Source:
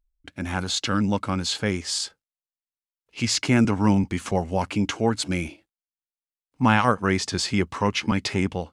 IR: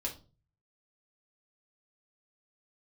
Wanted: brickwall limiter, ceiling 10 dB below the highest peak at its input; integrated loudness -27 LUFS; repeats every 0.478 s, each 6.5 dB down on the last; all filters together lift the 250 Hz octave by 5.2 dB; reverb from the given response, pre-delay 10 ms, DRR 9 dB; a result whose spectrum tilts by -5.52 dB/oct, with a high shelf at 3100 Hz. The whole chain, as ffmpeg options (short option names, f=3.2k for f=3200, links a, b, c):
-filter_complex "[0:a]equalizer=f=250:t=o:g=6.5,highshelf=f=3.1k:g=-4.5,alimiter=limit=-12dB:level=0:latency=1,aecho=1:1:478|956|1434|1912|2390|2868:0.473|0.222|0.105|0.0491|0.0231|0.0109,asplit=2[a][b];[1:a]atrim=start_sample=2205,adelay=10[c];[b][c]afir=irnorm=-1:irlink=0,volume=-10.5dB[d];[a][d]amix=inputs=2:normalize=0,volume=-4.5dB"